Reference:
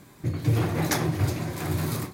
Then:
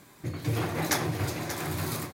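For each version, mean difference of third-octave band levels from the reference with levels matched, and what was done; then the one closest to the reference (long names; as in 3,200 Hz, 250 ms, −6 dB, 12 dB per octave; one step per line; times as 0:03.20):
4.0 dB: low-shelf EQ 330 Hz −8 dB
on a send: single-tap delay 584 ms −10 dB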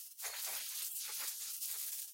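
21.5 dB: gate on every frequency bin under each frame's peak −30 dB weak
bass and treble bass −4 dB, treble +13 dB
downward compressor 8 to 1, threshold −46 dBFS, peak gain reduction 18.5 dB
level +6 dB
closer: first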